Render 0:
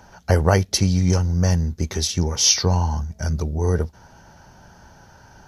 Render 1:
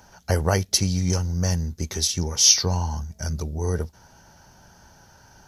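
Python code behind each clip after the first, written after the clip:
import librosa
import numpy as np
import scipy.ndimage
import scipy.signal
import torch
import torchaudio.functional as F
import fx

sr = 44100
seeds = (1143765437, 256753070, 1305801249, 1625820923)

y = fx.high_shelf(x, sr, hz=4500.0, db=10.0)
y = y * 10.0 ** (-5.0 / 20.0)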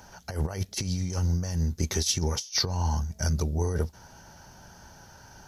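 y = fx.over_compress(x, sr, threshold_db=-25.0, ratio=-0.5)
y = y * 10.0 ** (-1.5 / 20.0)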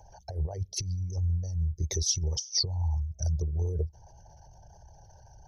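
y = fx.envelope_sharpen(x, sr, power=2.0)
y = fx.fixed_phaser(y, sr, hz=560.0, stages=4)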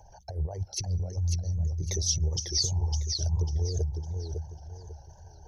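y = fx.echo_warbled(x, sr, ms=551, feedback_pct=32, rate_hz=2.8, cents=162, wet_db=-5)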